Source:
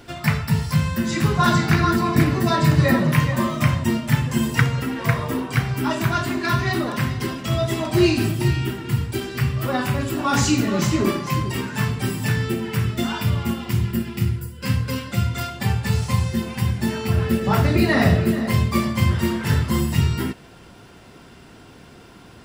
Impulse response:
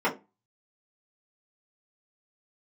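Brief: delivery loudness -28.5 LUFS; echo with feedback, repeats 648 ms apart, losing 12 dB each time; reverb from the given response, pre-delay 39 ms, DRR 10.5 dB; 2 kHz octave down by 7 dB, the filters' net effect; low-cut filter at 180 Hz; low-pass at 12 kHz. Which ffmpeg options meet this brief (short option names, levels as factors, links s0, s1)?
-filter_complex "[0:a]highpass=180,lowpass=12000,equalizer=f=2000:t=o:g=-9,aecho=1:1:648|1296|1944:0.251|0.0628|0.0157,asplit=2[s0][s1];[1:a]atrim=start_sample=2205,adelay=39[s2];[s1][s2]afir=irnorm=-1:irlink=0,volume=0.0596[s3];[s0][s3]amix=inputs=2:normalize=0,volume=0.631"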